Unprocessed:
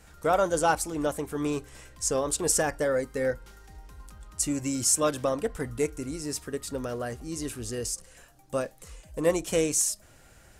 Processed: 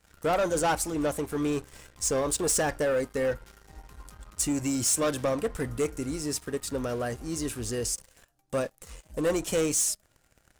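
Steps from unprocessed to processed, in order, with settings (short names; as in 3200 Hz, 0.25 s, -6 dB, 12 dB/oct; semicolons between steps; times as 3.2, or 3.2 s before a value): sample leveller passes 3; gain -9 dB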